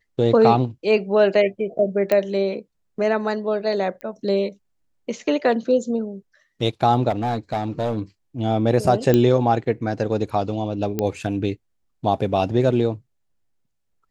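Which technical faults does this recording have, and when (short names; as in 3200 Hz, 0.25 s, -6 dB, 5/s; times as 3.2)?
2.12 pop -8 dBFS
4.01 pop -21 dBFS
7.09–7.99 clipped -18 dBFS
9.14 pop -6 dBFS
10.99 pop -9 dBFS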